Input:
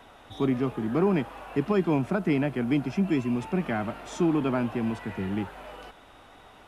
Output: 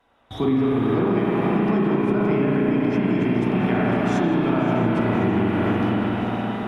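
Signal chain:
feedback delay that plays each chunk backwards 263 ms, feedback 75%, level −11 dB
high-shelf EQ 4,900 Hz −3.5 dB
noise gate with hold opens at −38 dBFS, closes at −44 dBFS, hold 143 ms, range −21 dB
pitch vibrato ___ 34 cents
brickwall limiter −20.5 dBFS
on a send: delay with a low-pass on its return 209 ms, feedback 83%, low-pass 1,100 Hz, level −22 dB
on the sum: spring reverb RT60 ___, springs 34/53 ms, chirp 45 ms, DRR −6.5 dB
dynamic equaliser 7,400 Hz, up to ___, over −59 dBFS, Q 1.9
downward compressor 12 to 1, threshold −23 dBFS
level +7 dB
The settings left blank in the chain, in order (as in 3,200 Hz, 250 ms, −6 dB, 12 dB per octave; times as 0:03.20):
8.2 Hz, 3.9 s, −4 dB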